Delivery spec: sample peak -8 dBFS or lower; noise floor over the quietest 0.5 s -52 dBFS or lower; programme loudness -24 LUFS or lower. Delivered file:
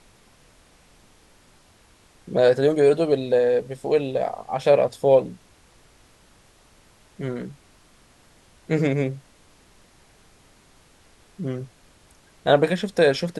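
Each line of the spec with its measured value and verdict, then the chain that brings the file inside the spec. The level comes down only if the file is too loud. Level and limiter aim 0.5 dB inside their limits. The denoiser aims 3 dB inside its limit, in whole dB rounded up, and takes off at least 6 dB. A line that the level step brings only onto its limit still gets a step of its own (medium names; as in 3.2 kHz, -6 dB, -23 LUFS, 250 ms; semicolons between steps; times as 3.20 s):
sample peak -5.0 dBFS: fail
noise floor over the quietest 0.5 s -56 dBFS: pass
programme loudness -21.5 LUFS: fail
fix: trim -3 dB; peak limiter -8.5 dBFS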